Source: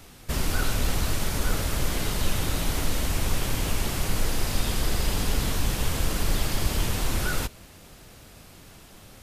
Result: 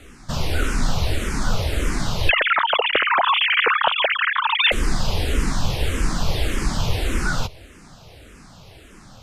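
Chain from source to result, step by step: 2.29–4.72 sine-wave speech; air absorption 56 m; endless phaser -1.7 Hz; gain +7.5 dB

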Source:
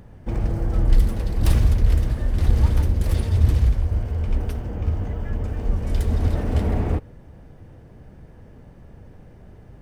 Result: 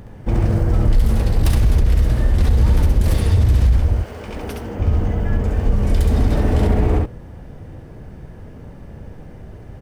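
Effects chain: 3.95–4.78 HPF 670 Hz -> 230 Hz 6 dB/oct; early reflections 19 ms -14.5 dB, 68 ms -3.5 dB; maximiser +12.5 dB; gain -6 dB

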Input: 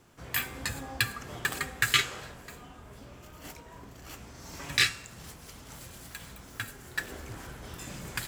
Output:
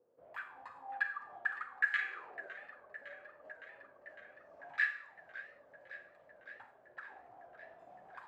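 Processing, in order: high shelf 4000 Hz -10 dB; auto-wah 480–1700 Hz, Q 12, up, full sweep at -28.5 dBFS; 2.01–2.48 small resonant body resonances 380/2400 Hz, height 17 dB, ringing for 20 ms; Schroeder reverb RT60 0.6 s, combs from 32 ms, DRR 9 dB; warbling echo 0.559 s, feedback 76%, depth 129 cents, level -15.5 dB; gain +3.5 dB

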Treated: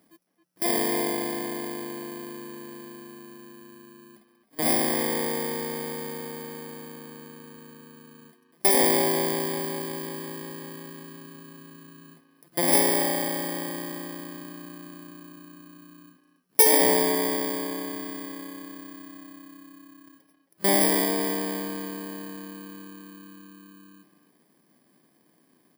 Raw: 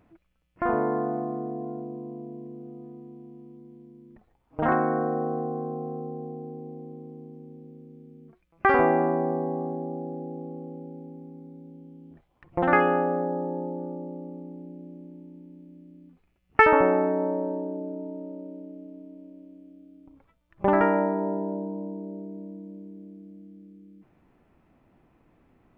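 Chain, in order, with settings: FFT order left unsorted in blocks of 32 samples; HPF 170 Hz 24 dB/oct; speakerphone echo 0.27 s, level -9 dB

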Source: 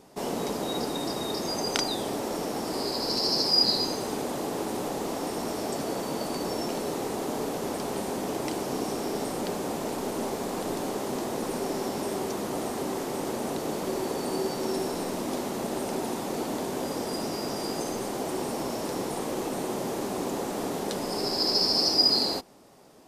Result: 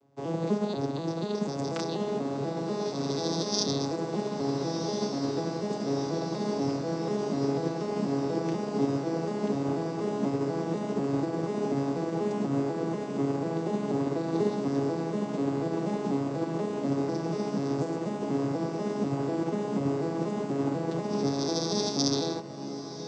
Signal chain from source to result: arpeggiated vocoder minor triad, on C#3, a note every 0.244 s; on a send: diffused feedback echo 1.421 s, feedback 63%, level -7 dB; on the sum: upward expander 1.5:1, over -51 dBFS; gain +2.5 dB

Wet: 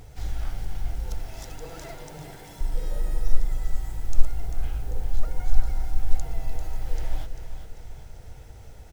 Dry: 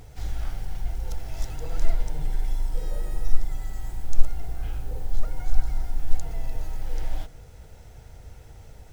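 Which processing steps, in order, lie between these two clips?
1.23–2.61 HPF 160 Hz 12 dB/oct; on a send: feedback echo 0.394 s, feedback 51%, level -9.5 dB

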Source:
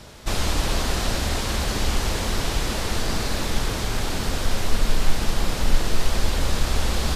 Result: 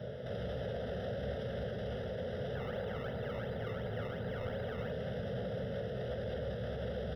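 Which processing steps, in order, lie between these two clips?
HPF 100 Hz 24 dB/oct; resonant low shelf 670 Hz +9 dB, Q 3; limiter -24.5 dBFS, peak gain reduction 17 dB; 2.55–4.92 decimation with a swept rate 19×, swing 100% 2.8 Hz; polynomial smoothing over 25 samples; fixed phaser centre 1600 Hz, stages 8; doubler 16 ms -12 dB; gain -3 dB

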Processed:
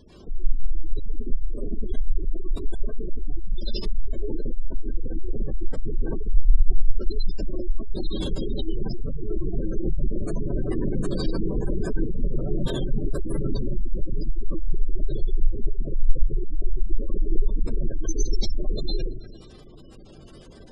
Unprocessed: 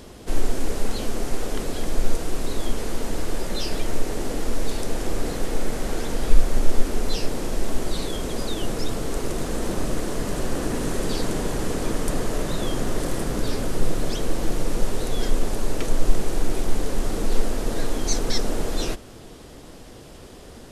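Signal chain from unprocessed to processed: notches 50/100/150/200 Hz; in parallel at -12 dB: fuzz box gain 35 dB, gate -35 dBFS; on the sum: bell 640 Hz -7.5 dB 2.4 oct; on a send: thin delay 0.111 s, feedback 69%, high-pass 1500 Hz, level -16.5 dB; on the sum: plate-style reverb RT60 0.73 s, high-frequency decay 0.75×, pre-delay 85 ms, DRR -6 dB; spectral gate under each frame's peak -20 dB strong; gain -5.5 dB

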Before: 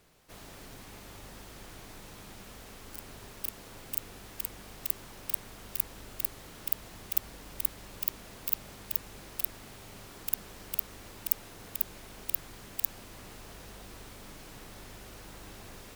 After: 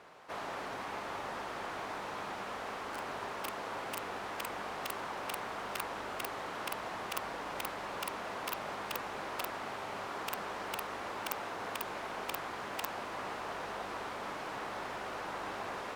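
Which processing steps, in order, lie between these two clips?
band-pass 980 Hz, Q 1.1; gain +15.5 dB

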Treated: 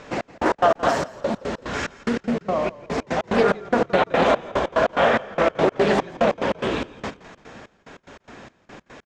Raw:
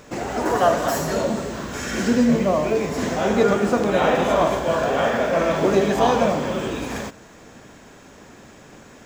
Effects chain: LPF 4200 Hz 12 dB/oct; notches 50/100/150/200/250/300/350/400 Hz; limiter -12 dBFS, peak gain reduction 6.5 dB; low shelf 410 Hz -4.5 dB; 0.9–3.3 compressor 5:1, threshold -24 dBFS, peak gain reduction 5.5 dB; step gate "xx..x.x." 145 bpm -60 dB; frequency-shifting echo 0.169 s, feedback 50%, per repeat -31 Hz, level -19.5 dB; Doppler distortion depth 0.25 ms; gain +5.5 dB

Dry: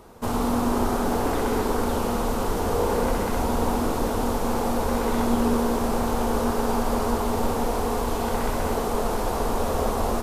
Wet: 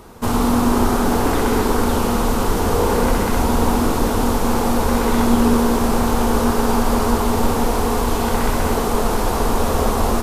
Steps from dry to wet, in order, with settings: bell 600 Hz -4.5 dB 1.1 oct; gain +8 dB

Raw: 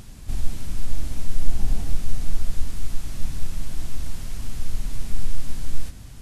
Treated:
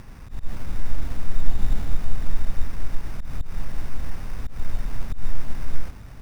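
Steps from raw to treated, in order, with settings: auto swell 0.133 s; sample-and-hold 12×

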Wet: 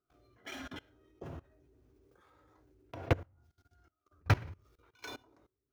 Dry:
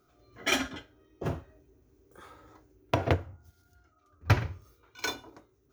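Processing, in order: median filter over 5 samples; level quantiser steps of 22 dB

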